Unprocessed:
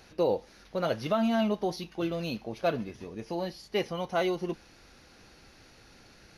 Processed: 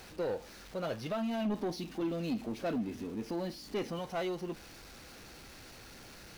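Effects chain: jump at every zero crossing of -42.5 dBFS; 1.45–3.99 s: peaking EQ 260 Hz +13.5 dB 0.65 oct; saturation -22 dBFS, distortion -14 dB; trim -6 dB

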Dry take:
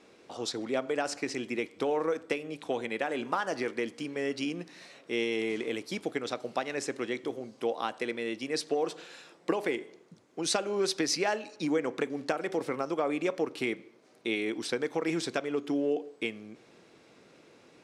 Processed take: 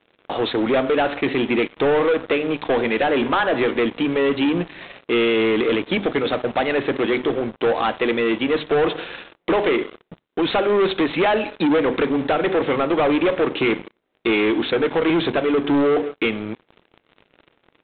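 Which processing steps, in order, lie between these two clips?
hum notches 50/100/150/200/250 Hz; waveshaping leveller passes 5; G.726 32 kbps 8 kHz

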